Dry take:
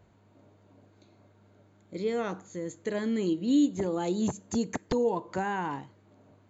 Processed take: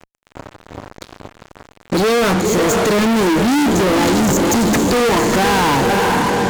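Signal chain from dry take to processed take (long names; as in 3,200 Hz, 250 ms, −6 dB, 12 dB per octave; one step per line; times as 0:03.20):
feedback delay with all-pass diffusion 511 ms, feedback 43%, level −9.5 dB
fuzz pedal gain 50 dB, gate −54 dBFS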